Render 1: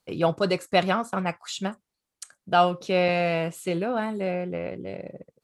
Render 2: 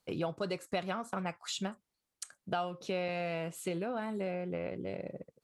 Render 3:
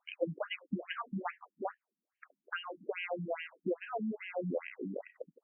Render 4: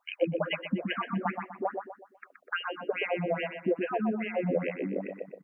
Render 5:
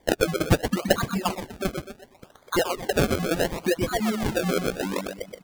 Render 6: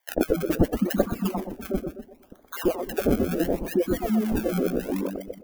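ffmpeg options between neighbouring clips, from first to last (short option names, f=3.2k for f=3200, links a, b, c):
-af "acompressor=threshold=-31dB:ratio=4,volume=-2.5dB"
-af "afftfilt=real='re*between(b*sr/1024,210*pow(2300/210,0.5+0.5*sin(2*PI*2.4*pts/sr))/1.41,210*pow(2300/210,0.5+0.5*sin(2*PI*2.4*pts/sr))*1.41)':imag='im*between(b*sr/1024,210*pow(2300/210,0.5+0.5*sin(2*PI*2.4*pts/sr))/1.41,210*pow(2300/210,0.5+0.5*sin(2*PI*2.4*pts/sr))*1.41)':win_size=1024:overlap=0.75,volume=6dB"
-filter_complex "[0:a]asplit=2[a][b];[b]adelay=124,lowpass=f=2.7k:p=1,volume=-5.5dB,asplit=2[c][d];[d]adelay=124,lowpass=f=2.7k:p=1,volume=0.4,asplit=2[e][f];[f]adelay=124,lowpass=f=2.7k:p=1,volume=0.4,asplit=2[g][h];[h]adelay=124,lowpass=f=2.7k:p=1,volume=0.4,asplit=2[i][j];[j]adelay=124,lowpass=f=2.7k:p=1,volume=0.4[k];[a][c][e][g][i][k]amix=inputs=6:normalize=0,volume=6.5dB"
-af "aexciter=amount=15.4:drive=2.9:freq=2.9k,acrusher=samples=32:mix=1:aa=0.000001:lfo=1:lforange=32:lforate=0.71,volume=4dB"
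-filter_complex "[0:a]equalizer=f=125:t=o:w=1:g=-12,equalizer=f=250:t=o:w=1:g=5,equalizer=f=500:t=o:w=1:g=-3,equalizer=f=1k:t=o:w=1:g=-6,equalizer=f=2k:t=o:w=1:g=-7,equalizer=f=4k:t=o:w=1:g=-12,equalizer=f=8k:t=o:w=1:g=-9,acrossover=split=1100[a][b];[a]adelay=90[c];[c][b]amix=inputs=2:normalize=0,volume=3dB"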